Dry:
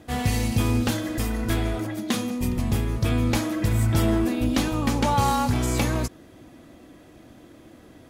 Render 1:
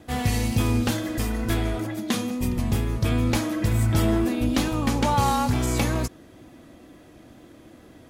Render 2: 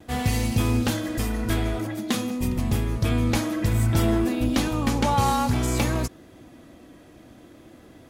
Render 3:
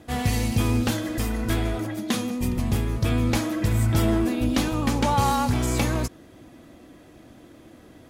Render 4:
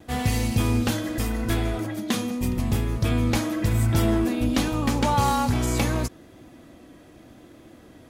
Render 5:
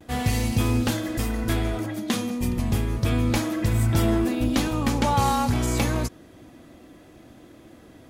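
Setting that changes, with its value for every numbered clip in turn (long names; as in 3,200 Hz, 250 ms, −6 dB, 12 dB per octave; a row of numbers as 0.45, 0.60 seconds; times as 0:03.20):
pitch vibrato, speed: 2.2, 0.54, 9.8, 0.83, 0.31 Hertz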